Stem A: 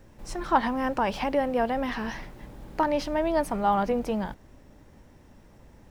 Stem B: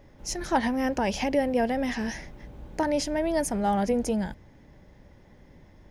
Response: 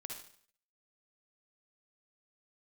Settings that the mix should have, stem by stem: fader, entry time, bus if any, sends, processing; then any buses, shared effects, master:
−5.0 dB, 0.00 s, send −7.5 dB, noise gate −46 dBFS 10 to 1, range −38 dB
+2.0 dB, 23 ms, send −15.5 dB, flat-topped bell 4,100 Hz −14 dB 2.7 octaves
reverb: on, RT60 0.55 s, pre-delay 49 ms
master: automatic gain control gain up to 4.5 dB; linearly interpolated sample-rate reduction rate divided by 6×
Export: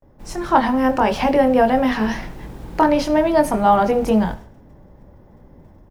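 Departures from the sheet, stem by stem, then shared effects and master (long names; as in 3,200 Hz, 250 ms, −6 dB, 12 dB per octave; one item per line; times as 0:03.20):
stem A −5.0 dB → +3.0 dB
master: missing linearly interpolated sample-rate reduction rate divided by 6×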